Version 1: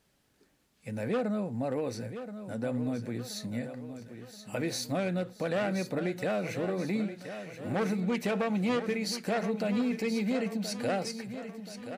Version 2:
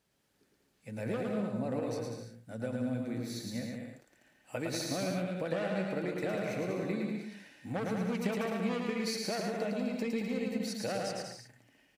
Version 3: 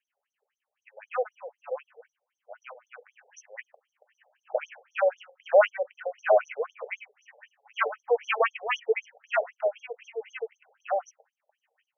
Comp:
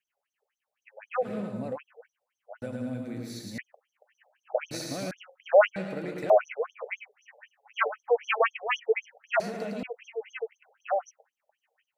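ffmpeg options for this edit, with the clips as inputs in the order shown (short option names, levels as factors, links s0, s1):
-filter_complex "[1:a]asplit=5[s0][s1][s2][s3][s4];[2:a]asplit=6[s5][s6][s7][s8][s9][s10];[s5]atrim=end=1.3[s11];[s0]atrim=start=1.2:end=1.78[s12];[s6]atrim=start=1.68:end=2.622[s13];[s1]atrim=start=2.618:end=3.582[s14];[s7]atrim=start=3.578:end=4.712[s15];[s2]atrim=start=4.708:end=5.112[s16];[s8]atrim=start=5.108:end=5.762[s17];[s3]atrim=start=5.758:end=6.302[s18];[s9]atrim=start=6.298:end=9.402[s19];[s4]atrim=start=9.398:end=9.832[s20];[s10]atrim=start=9.828[s21];[s11][s12]acrossfade=d=0.1:c1=tri:c2=tri[s22];[s22][s13]acrossfade=d=0.1:c1=tri:c2=tri[s23];[s23][s14]acrossfade=d=0.004:c1=hsin:c2=hsin[s24];[s24][s15]acrossfade=d=0.004:c1=hsin:c2=hsin[s25];[s25][s16]acrossfade=d=0.004:c1=hsin:c2=hsin[s26];[s26][s17]acrossfade=d=0.004:c1=hsin:c2=hsin[s27];[s27][s18]acrossfade=d=0.004:c1=hsin:c2=hsin[s28];[s28][s19]acrossfade=d=0.004:c1=hsin:c2=hsin[s29];[s29][s20]acrossfade=d=0.004:c1=hsin:c2=hsin[s30];[s30][s21]acrossfade=d=0.004:c1=hsin:c2=hsin"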